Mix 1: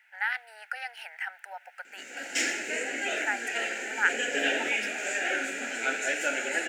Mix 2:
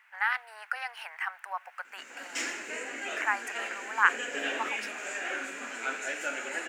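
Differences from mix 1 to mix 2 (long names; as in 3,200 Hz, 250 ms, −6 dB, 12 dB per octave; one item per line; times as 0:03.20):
background −6.0 dB
master: remove Butterworth band-reject 1,100 Hz, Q 2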